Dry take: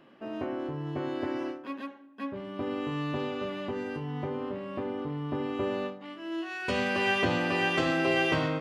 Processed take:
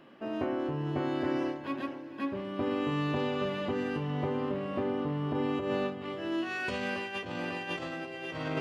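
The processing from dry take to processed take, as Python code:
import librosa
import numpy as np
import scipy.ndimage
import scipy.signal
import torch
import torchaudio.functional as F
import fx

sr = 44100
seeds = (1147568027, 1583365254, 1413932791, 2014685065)

y = fx.echo_diffused(x, sr, ms=510, feedback_pct=40, wet_db=-12)
y = fx.over_compress(y, sr, threshold_db=-31.0, ratio=-0.5)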